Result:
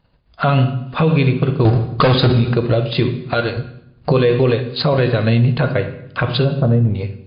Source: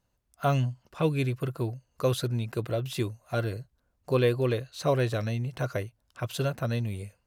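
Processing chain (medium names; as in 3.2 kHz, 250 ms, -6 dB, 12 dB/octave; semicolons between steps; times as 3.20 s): recorder AGC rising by 13 dB/s; 3.10–3.57 s: tilt EQ +2 dB/octave; 6.44–6.95 s: Bessel low-pass 560 Hz, order 2; transient shaper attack +5 dB, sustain -10 dB; 1.65–2.30 s: waveshaping leveller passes 5; reverberation RT60 0.75 s, pre-delay 3 ms, DRR 8 dB; loudness maximiser +19 dB; trim -4.5 dB; MP3 32 kbps 11.025 kHz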